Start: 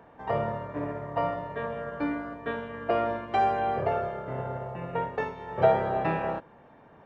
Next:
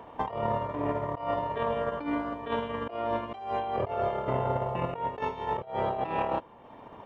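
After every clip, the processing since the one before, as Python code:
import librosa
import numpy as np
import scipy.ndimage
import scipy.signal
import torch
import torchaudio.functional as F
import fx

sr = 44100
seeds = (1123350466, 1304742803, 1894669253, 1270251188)

y = fx.transient(x, sr, attack_db=9, sustain_db=-5)
y = fx.graphic_eq_31(y, sr, hz=(160, 1000, 1600, 3150), db=(-8, 6, -8, 7))
y = fx.over_compress(y, sr, threshold_db=-32.0, ratio=-1.0)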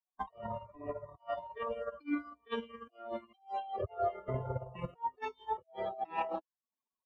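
y = fx.bin_expand(x, sr, power=3.0)
y = fx.band_widen(y, sr, depth_pct=40)
y = y * 10.0 ** (-1.0 / 20.0)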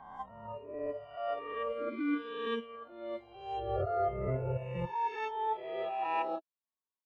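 y = fx.spec_swells(x, sr, rise_s=1.58)
y = fx.env_lowpass(y, sr, base_hz=2300.0, full_db=-30.0)
y = fx.noise_reduce_blind(y, sr, reduce_db=11)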